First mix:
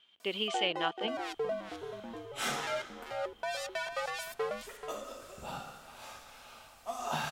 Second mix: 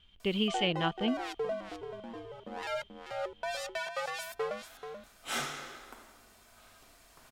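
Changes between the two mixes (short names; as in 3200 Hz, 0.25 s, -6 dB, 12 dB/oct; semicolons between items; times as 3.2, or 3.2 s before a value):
speech: remove HPF 410 Hz 12 dB/oct; second sound: entry +2.90 s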